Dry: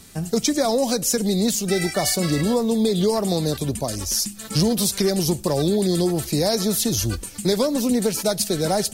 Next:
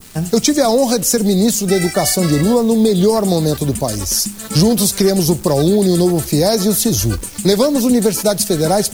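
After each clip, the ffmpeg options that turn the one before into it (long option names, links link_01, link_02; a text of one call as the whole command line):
ffmpeg -i in.wav -af "adynamicequalizer=threshold=0.01:dfrequency=3100:dqfactor=0.73:tfrequency=3100:tqfactor=0.73:attack=5:release=100:ratio=0.375:range=2.5:mode=cutabove:tftype=bell,acrusher=bits=8:dc=4:mix=0:aa=0.000001,volume=7.5dB" out.wav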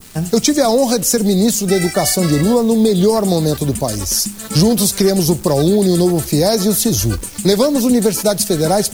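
ffmpeg -i in.wav -af anull out.wav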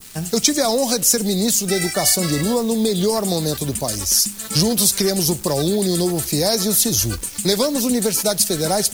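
ffmpeg -i in.wav -af "tiltshelf=frequency=1400:gain=-4,volume=-3dB" out.wav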